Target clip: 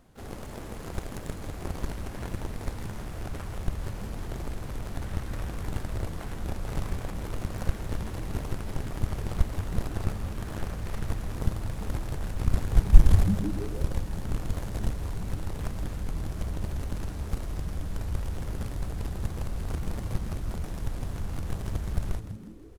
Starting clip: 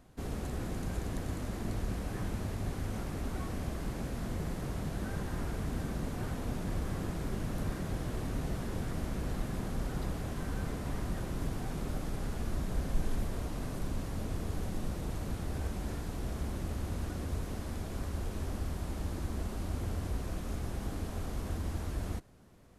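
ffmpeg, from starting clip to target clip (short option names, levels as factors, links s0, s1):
-filter_complex "[0:a]aeval=exprs='0.126*(cos(1*acos(clip(val(0)/0.126,-1,1)))-cos(1*PI/2))+0.0316*(cos(7*acos(clip(val(0)/0.126,-1,1)))-cos(7*PI/2))+0.000794*(cos(8*acos(clip(val(0)/0.126,-1,1)))-cos(8*PI/2))':c=same,asubboost=boost=4.5:cutoff=99,asplit=2[s0][s1];[s1]asetrate=88200,aresample=44100,atempo=0.5,volume=0.282[s2];[s0][s2]amix=inputs=2:normalize=0,asplit=2[s3][s4];[s4]asplit=5[s5][s6][s7][s8][s9];[s5]adelay=162,afreqshift=-110,volume=0.282[s10];[s6]adelay=324,afreqshift=-220,volume=0.135[s11];[s7]adelay=486,afreqshift=-330,volume=0.0646[s12];[s8]adelay=648,afreqshift=-440,volume=0.0313[s13];[s9]adelay=810,afreqshift=-550,volume=0.015[s14];[s10][s11][s12][s13][s14]amix=inputs=5:normalize=0[s15];[s3][s15]amix=inputs=2:normalize=0,volume=1.41"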